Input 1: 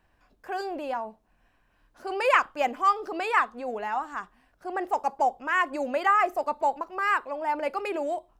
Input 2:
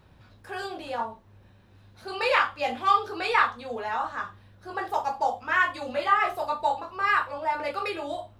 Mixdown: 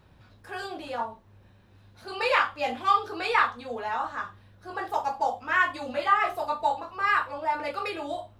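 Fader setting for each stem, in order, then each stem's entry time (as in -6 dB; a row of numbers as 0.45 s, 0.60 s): -14.0 dB, -1.0 dB; 0.00 s, 0.00 s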